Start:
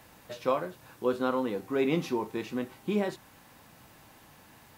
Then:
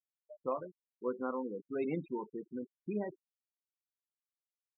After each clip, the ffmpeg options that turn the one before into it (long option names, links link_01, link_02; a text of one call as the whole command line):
ffmpeg -i in.wav -af "afftfilt=real='re*gte(hypot(re,im),0.0501)':imag='im*gte(hypot(re,im),0.0501)':win_size=1024:overlap=0.75,volume=-8dB" out.wav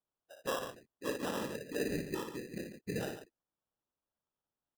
ffmpeg -i in.wav -af "afftfilt=real='hypot(re,im)*cos(2*PI*random(0))':imag='hypot(re,im)*sin(2*PI*random(1))':win_size=512:overlap=0.75,aecho=1:1:58.31|142.9:0.562|0.316,acrusher=samples=20:mix=1:aa=0.000001,volume=4.5dB" out.wav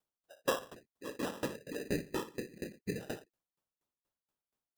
ffmpeg -i in.wav -af "aeval=exprs='val(0)*pow(10,-25*if(lt(mod(4.2*n/s,1),2*abs(4.2)/1000),1-mod(4.2*n/s,1)/(2*abs(4.2)/1000),(mod(4.2*n/s,1)-2*abs(4.2)/1000)/(1-2*abs(4.2)/1000))/20)':channel_layout=same,volume=7dB" out.wav